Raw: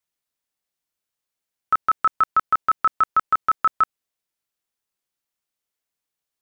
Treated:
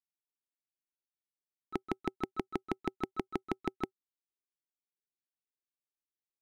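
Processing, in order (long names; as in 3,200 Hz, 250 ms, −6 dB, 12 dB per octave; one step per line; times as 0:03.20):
downward expander −9 dBFS
drawn EQ curve 120 Hz 0 dB, 220 Hz +8 dB, 380 Hz +13 dB, 550 Hz −13 dB, 800 Hz −2 dB, 1,300 Hz −28 dB, 2,100 Hz −4 dB
level +11.5 dB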